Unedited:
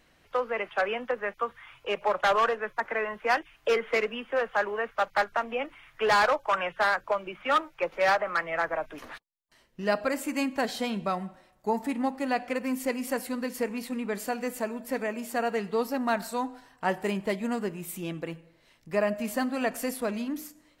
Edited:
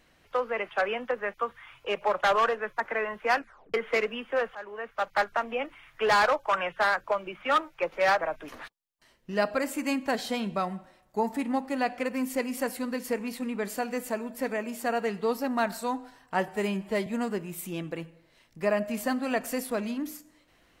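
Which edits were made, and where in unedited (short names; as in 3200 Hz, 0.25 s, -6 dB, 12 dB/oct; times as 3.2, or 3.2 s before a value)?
3.35 tape stop 0.39 s
4.55–5.21 fade in, from -17 dB
8.21–8.71 cut
16.98–17.37 stretch 1.5×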